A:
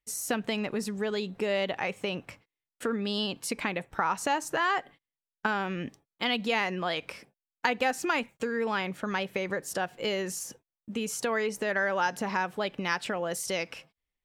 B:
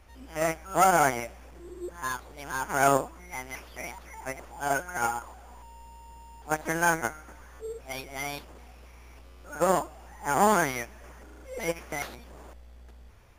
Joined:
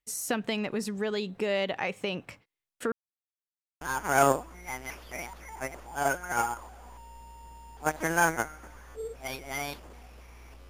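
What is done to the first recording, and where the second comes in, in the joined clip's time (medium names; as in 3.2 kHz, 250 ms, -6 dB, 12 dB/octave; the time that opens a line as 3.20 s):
A
2.92–3.81 s: mute
3.81 s: go over to B from 2.46 s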